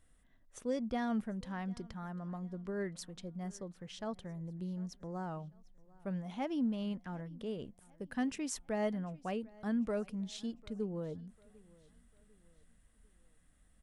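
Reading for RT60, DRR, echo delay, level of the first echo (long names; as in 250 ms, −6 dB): no reverb audible, no reverb audible, 747 ms, −24.0 dB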